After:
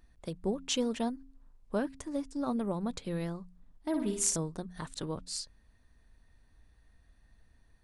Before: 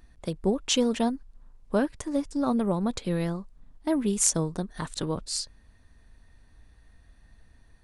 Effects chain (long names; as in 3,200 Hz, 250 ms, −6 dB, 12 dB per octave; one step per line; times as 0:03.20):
hum removal 89.61 Hz, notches 3
0:03.88–0:04.36: flutter between parallel walls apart 9.8 metres, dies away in 0.55 s
level −7 dB